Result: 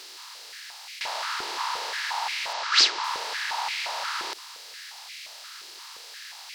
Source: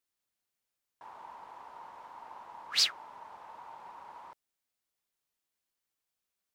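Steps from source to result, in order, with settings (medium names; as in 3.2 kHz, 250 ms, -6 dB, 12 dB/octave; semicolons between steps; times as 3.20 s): spectral levelling over time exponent 0.4; 2.53–3.04 s: low-pass 7.1 kHz 24 dB/octave; step-sequenced high-pass 5.7 Hz 370–2200 Hz; trim +5.5 dB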